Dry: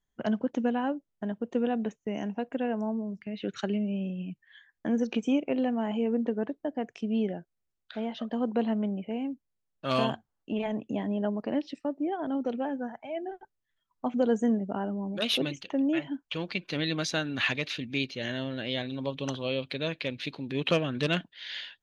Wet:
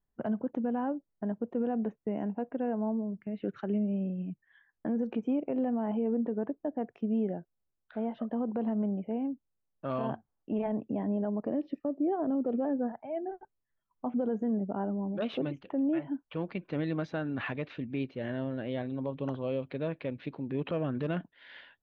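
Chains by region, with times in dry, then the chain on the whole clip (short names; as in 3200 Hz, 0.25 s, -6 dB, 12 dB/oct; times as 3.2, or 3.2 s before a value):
11.45–12.92 bell 300 Hz +8.5 dB 1.3 oct + comb 1.7 ms, depth 33%
whole clip: LPF 1200 Hz 12 dB/oct; limiter -23 dBFS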